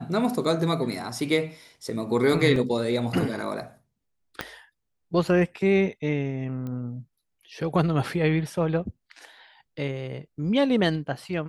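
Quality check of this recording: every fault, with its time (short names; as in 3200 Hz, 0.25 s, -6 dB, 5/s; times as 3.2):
2.56 gap 2.6 ms
4.41 pop -14 dBFS
6.67 pop -24 dBFS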